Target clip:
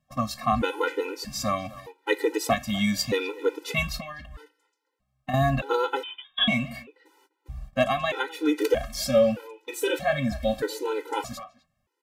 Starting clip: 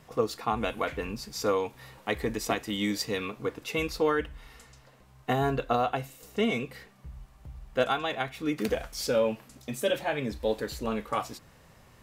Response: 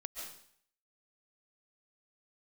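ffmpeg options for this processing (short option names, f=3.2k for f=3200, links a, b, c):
-filter_complex "[0:a]agate=range=-26dB:threshold=-45dB:ratio=16:detection=peak,asettb=1/sr,asplit=3[a][b][c];[a]atrim=end=3.974[d];[b]atrim=start=3.97:end=5.34,asetpts=PTS-STARTPTS,afade=t=in:d=0.004:c=qsin,afade=t=out:st=1.366:d=0.004:c=qsin,acompressor=threshold=-36dB:ratio=6[e];[c]atrim=start=5.336[f];[d][e]acrossfade=d=0.004:c1=hsin:c2=qsin[g];[g][f]acrossfade=d=0.004:c1=qsin:c2=hsin,asplit=2[h][i];[i]adelay=250,highpass=300,lowpass=3.4k,asoftclip=type=hard:threshold=-20.5dB,volume=-17dB[j];[h][j]amix=inputs=2:normalize=0,asettb=1/sr,asplit=3[k][l][m];[k]atrim=end=6.034[n];[l]atrim=start=6.03:end=6.48,asetpts=PTS-STARTPTS,afade=t=in:d=0.004:c=qsin,afade=t=out:st=0.446:d=0.004:c=qsin,lowpass=f=3.2k:t=q:w=0.5098,lowpass=f=3.2k:t=q:w=0.6013,lowpass=f=3.2k:t=q:w=0.9,lowpass=f=3.2k:t=q:w=2.563,afreqshift=-3800[o];[m]atrim=start=6.476[p];[n][o]acrossfade=d=0.004:c1=hsin:c2=qsin[q];[q][p]acrossfade=d=0.004:c1=qsin:c2=hsin,afftfilt=real='re*gt(sin(2*PI*0.8*pts/sr)*(1-2*mod(floor(b*sr/1024/260),2)),0)':imag='im*gt(sin(2*PI*0.8*pts/sr)*(1-2*mod(floor(b*sr/1024/260),2)),0)':win_size=1024:overlap=0.75,volume=7.5dB"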